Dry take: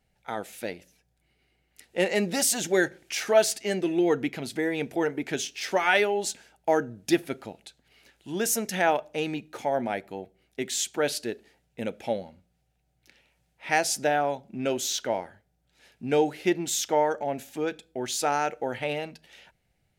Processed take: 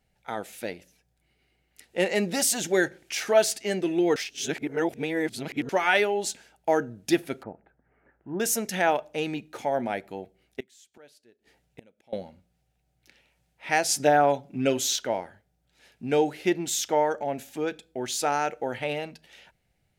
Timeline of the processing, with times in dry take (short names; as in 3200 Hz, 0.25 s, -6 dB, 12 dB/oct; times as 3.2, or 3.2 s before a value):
4.16–5.69 reverse
7.43–8.4 steep low-pass 1700 Hz
10.6–12.13 flipped gate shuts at -31 dBFS, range -27 dB
13.88–14.96 comb 7 ms, depth 96%